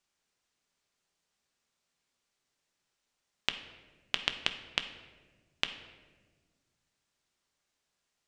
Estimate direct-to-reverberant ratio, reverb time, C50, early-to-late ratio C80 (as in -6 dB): 7.0 dB, 1.5 s, 10.5 dB, 12.5 dB